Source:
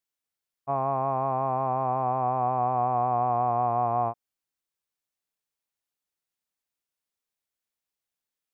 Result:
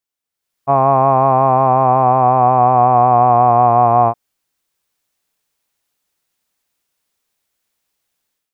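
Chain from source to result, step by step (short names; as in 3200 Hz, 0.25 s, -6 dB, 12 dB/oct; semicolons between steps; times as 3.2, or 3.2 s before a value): AGC gain up to 13.5 dB; gain +2 dB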